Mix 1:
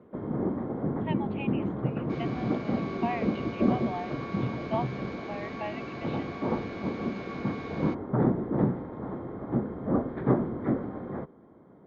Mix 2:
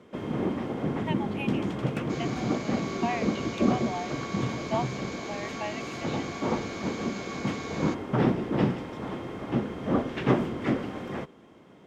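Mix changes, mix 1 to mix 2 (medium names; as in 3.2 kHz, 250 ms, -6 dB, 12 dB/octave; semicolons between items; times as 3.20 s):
first sound: remove boxcar filter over 16 samples; master: remove distance through air 280 m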